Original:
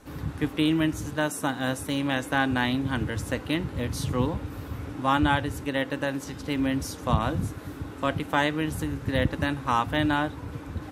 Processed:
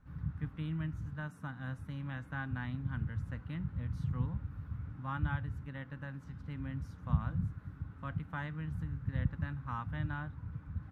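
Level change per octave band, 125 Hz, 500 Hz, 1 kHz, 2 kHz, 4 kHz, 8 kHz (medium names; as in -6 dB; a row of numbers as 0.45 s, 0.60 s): -5.0 dB, -24.0 dB, -18.0 dB, -16.0 dB, under -25 dB, under -30 dB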